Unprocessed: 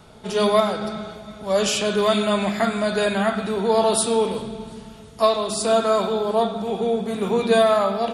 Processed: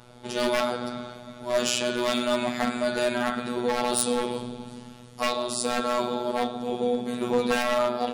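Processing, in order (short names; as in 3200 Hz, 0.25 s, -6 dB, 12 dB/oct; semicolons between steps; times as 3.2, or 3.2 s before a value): wavefolder -14 dBFS; robotiser 122 Hz; gain -1 dB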